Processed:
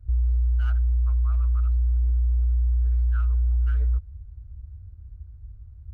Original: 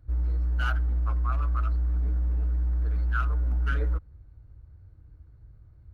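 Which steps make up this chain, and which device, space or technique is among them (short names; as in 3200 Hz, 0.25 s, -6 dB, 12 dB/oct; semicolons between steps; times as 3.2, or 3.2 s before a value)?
car stereo with a boomy subwoofer (resonant low shelf 120 Hz +13.5 dB, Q 1.5; limiter -11.5 dBFS, peak gain reduction 7.5 dB); gain -6 dB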